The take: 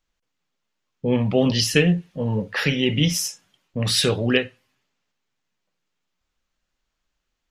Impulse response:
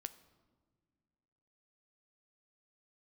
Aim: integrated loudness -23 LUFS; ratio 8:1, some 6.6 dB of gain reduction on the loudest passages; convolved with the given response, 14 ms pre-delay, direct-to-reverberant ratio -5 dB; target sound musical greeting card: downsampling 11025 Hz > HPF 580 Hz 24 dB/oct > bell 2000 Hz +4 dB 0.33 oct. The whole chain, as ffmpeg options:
-filter_complex "[0:a]acompressor=threshold=-19dB:ratio=8,asplit=2[a][b];[1:a]atrim=start_sample=2205,adelay=14[c];[b][c]afir=irnorm=-1:irlink=0,volume=9dB[d];[a][d]amix=inputs=2:normalize=0,aresample=11025,aresample=44100,highpass=f=580:w=0.5412,highpass=f=580:w=1.3066,equalizer=f=2k:t=o:w=0.33:g=4,volume=-0.5dB"

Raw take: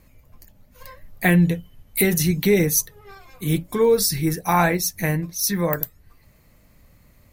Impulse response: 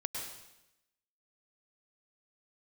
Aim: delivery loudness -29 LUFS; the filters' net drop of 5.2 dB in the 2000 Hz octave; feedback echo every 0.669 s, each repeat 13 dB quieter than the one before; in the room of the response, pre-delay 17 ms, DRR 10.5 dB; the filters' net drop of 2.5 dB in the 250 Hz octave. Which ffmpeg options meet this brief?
-filter_complex "[0:a]equalizer=f=250:t=o:g=-4.5,equalizer=f=2k:t=o:g=-6,aecho=1:1:669|1338|2007:0.224|0.0493|0.0108,asplit=2[a][b];[1:a]atrim=start_sample=2205,adelay=17[c];[b][c]afir=irnorm=-1:irlink=0,volume=-12.5dB[d];[a][d]amix=inputs=2:normalize=0,volume=-7dB"

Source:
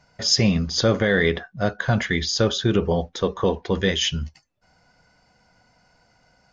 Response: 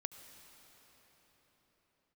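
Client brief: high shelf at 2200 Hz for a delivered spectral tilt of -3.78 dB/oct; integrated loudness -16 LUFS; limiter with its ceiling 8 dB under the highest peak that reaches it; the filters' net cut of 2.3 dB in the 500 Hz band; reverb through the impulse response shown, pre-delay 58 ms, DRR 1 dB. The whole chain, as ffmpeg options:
-filter_complex "[0:a]equalizer=f=500:t=o:g=-3,highshelf=f=2.2k:g=4.5,alimiter=limit=-10.5dB:level=0:latency=1,asplit=2[a][b];[1:a]atrim=start_sample=2205,adelay=58[c];[b][c]afir=irnorm=-1:irlink=0,volume=1.5dB[d];[a][d]amix=inputs=2:normalize=0,volume=4dB"

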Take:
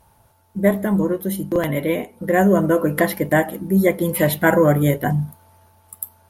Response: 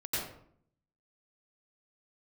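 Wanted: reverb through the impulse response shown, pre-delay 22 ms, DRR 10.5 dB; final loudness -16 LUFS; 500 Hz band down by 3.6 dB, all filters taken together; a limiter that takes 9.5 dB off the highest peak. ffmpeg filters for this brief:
-filter_complex "[0:a]equalizer=f=500:t=o:g=-4.5,alimiter=limit=-12dB:level=0:latency=1,asplit=2[a][b];[1:a]atrim=start_sample=2205,adelay=22[c];[b][c]afir=irnorm=-1:irlink=0,volume=-16dB[d];[a][d]amix=inputs=2:normalize=0,volume=6.5dB"

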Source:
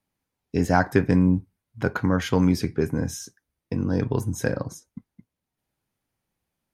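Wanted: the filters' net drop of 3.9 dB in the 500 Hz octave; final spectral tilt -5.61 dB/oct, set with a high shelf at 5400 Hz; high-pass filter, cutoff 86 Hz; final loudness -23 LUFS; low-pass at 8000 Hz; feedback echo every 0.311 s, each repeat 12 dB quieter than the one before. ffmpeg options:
-af "highpass=86,lowpass=8k,equalizer=f=500:t=o:g=-5,highshelf=f=5.4k:g=-3.5,aecho=1:1:311|622|933:0.251|0.0628|0.0157,volume=2.5dB"

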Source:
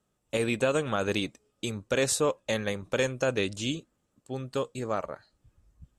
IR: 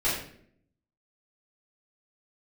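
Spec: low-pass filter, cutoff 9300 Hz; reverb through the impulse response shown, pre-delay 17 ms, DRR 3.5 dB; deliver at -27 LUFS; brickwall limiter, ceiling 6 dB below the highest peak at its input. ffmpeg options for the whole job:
-filter_complex "[0:a]lowpass=9.3k,alimiter=limit=-19dB:level=0:latency=1,asplit=2[a][b];[1:a]atrim=start_sample=2205,adelay=17[c];[b][c]afir=irnorm=-1:irlink=0,volume=-15dB[d];[a][d]amix=inputs=2:normalize=0,volume=3.5dB"

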